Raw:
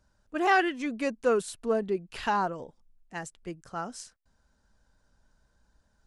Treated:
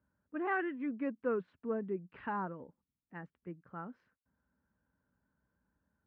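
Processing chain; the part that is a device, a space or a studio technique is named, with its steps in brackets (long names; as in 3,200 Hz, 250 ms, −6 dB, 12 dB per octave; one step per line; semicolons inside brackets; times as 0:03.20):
bass cabinet (loudspeaker in its box 67–2,000 Hz, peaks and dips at 180 Hz +5 dB, 270 Hz +6 dB, 710 Hz −7 dB)
level −9 dB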